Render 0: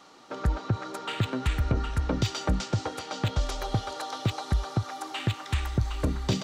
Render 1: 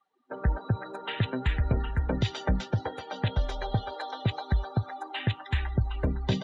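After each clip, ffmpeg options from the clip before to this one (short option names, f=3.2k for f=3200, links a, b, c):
-af "afftdn=nr=30:nf=-40,superequalizer=6b=0.562:10b=0.562:11b=1.78:14b=0.398:15b=0.447"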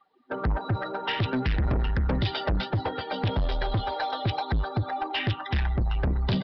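-af "aphaser=in_gain=1:out_gain=1:delay=1.6:decay=0.24:speed=0.6:type=triangular,aresample=11025,asoftclip=type=tanh:threshold=-29.5dB,aresample=44100,volume=8dB"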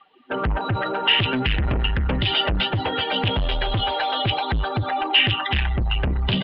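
-af "alimiter=level_in=3.5dB:limit=-24dB:level=0:latency=1:release=32,volume=-3.5dB,lowpass=f=2.9k:t=q:w=5.2,volume=8.5dB"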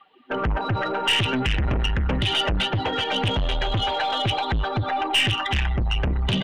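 -af "asoftclip=type=tanh:threshold=-14.5dB,aeval=exprs='0.188*(cos(1*acos(clip(val(0)/0.188,-1,1)))-cos(1*PI/2))+0.0188*(cos(2*acos(clip(val(0)/0.188,-1,1)))-cos(2*PI/2))':c=same"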